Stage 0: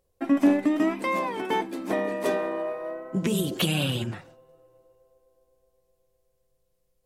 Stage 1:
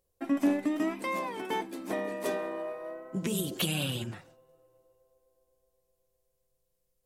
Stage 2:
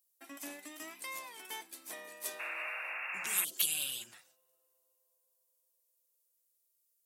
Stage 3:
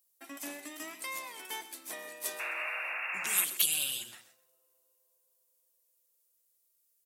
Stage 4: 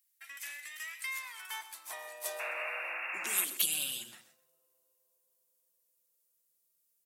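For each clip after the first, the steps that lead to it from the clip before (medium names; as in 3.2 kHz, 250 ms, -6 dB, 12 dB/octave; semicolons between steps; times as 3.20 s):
treble shelf 5.1 kHz +7 dB; trim -6.5 dB
painted sound noise, 2.39–3.45 s, 530–2800 Hz -32 dBFS; differentiator; trim +3.5 dB
feedback delay 129 ms, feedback 17%, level -14 dB; trim +3.5 dB
high-pass sweep 1.9 kHz -> 160 Hz, 0.96–4.02 s; trim -2.5 dB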